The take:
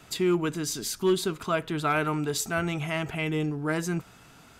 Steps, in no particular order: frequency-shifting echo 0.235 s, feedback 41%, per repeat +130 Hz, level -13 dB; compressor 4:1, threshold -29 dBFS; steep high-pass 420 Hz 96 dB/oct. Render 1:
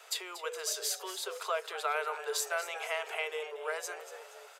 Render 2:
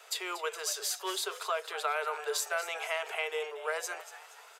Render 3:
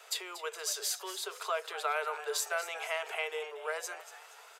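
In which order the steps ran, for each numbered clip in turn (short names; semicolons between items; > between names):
compressor > frequency-shifting echo > steep high-pass; steep high-pass > compressor > frequency-shifting echo; compressor > steep high-pass > frequency-shifting echo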